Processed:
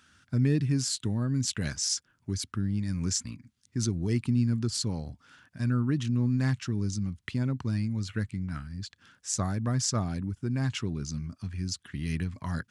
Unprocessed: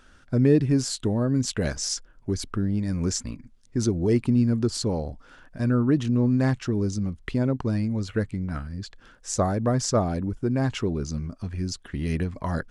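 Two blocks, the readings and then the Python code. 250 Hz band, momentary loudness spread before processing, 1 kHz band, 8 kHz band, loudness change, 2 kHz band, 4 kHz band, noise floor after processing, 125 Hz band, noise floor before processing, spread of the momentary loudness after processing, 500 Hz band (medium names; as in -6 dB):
-6.5 dB, 10 LU, -8.5 dB, -0.5 dB, -4.5 dB, -3.5 dB, -0.5 dB, -71 dBFS, -2.5 dB, -55 dBFS, 10 LU, -13.0 dB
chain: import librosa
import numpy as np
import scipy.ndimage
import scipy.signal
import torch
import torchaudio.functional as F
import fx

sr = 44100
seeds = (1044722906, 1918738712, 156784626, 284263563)

y = scipy.signal.sosfilt(scipy.signal.butter(4, 86.0, 'highpass', fs=sr, output='sos'), x)
y = fx.peak_eq(y, sr, hz=530.0, db=-15.0, octaves=1.9)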